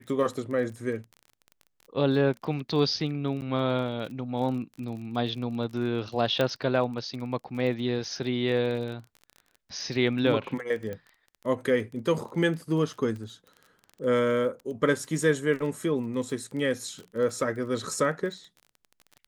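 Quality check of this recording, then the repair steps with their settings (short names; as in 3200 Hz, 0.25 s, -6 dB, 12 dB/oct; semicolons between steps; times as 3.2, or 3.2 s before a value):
crackle 26/s -36 dBFS
3.41–3.42 gap 9.6 ms
6.41 pop -13 dBFS
10.93 pop -24 dBFS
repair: de-click; interpolate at 3.41, 9.6 ms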